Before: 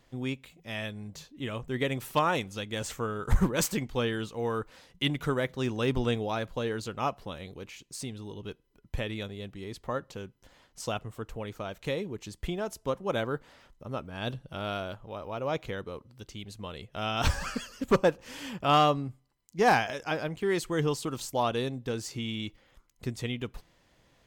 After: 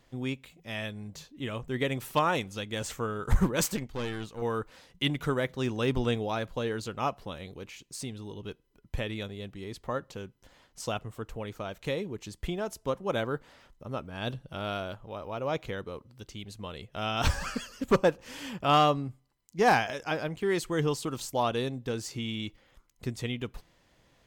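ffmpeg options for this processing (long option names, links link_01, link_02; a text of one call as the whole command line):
ffmpeg -i in.wav -filter_complex "[0:a]asettb=1/sr,asplit=3[link_01][link_02][link_03];[link_01]atrim=end=3.764[link_04];[link_02]atrim=start=3.76:end=4.42,asetpts=PTS-STARTPTS,afade=type=in:duration=0.004:curve=qsin,afade=type=out:start_time=0.656:duration=0.004:curve=qsin,aeval=exprs='(tanh(28.2*val(0)+0.7)-tanh(0.7))/28.2':channel_layout=same[link_05];[link_03]atrim=start=4.416[link_06];[link_04][link_05]acrossfade=duration=0.004:curve1=hsin:curve2=qsin[link_07];[link_07][link_06]acrossfade=duration=0.004:curve1=qsin:curve2=hsin" out.wav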